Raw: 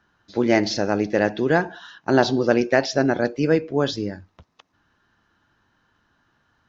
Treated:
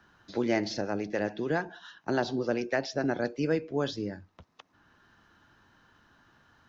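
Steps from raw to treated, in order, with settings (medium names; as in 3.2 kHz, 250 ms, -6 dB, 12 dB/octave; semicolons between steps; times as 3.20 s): 0.81–3.04 s: harmonic tremolo 7 Hz, depth 50%, crossover 560 Hz; three bands compressed up and down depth 40%; trim -8.5 dB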